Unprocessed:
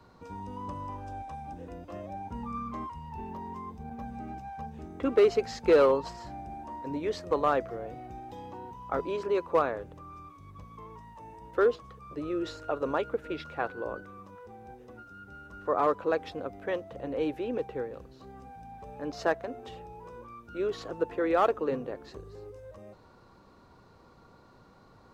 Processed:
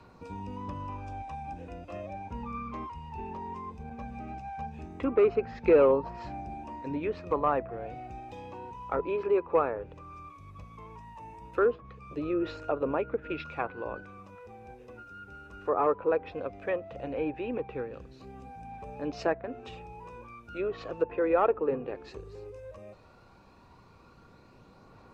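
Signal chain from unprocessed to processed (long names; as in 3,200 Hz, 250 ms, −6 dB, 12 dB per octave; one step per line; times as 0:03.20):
parametric band 2,500 Hz +11.5 dB 0.2 octaves
treble cut that deepens with the level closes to 1,500 Hz, closed at −26.5 dBFS
phase shifter 0.16 Hz, delay 2.5 ms, feedback 26%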